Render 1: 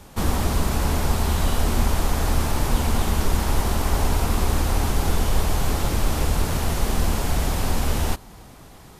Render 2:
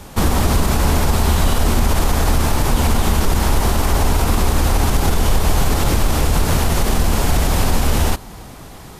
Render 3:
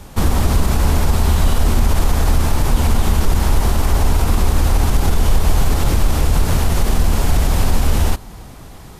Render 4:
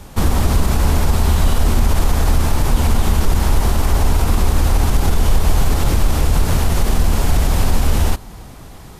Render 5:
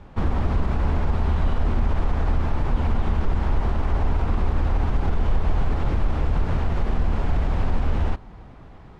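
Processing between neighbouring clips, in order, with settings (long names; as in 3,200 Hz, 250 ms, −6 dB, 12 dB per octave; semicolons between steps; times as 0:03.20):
brickwall limiter −14.5 dBFS, peak gain reduction 7 dB; level +8.5 dB
low-shelf EQ 120 Hz +6 dB; level −3 dB
no processing that can be heard
low-pass filter 2,200 Hz 12 dB per octave; level −7 dB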